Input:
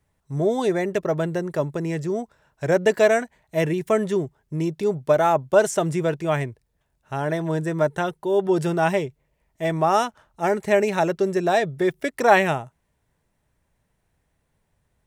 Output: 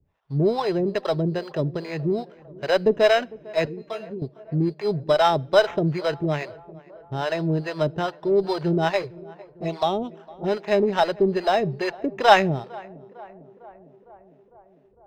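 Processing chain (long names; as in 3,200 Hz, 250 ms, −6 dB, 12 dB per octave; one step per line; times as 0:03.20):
bass and treble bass −1 dB, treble −9 dB
sample-rate reduction 4,500 Hz, jitter 0%
0:03.65–0:04.22: tuned comb filter 230 Hz, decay 0.2 s, harmonics all, mix 90%
two-band tremolo in antiphase 2.4 Hz, depth 100%, crossover 500 Hz
0:09.02–0:10.48: flanger swept by the level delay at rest 6.6 ms, full sweep at −26 dBFS
in parallel at −11 dB: asymmetric clip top −28 dBFS
on the sum: high-frequency loss of the air 200 metres
tape delay 454 ms, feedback 77%, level −20 dB, low-pass 1,300 Hz
on a send at −23 dB: convolution reverb RT60 0.65 s, pre-delay 3 ms
on the sum: level +3.5 dB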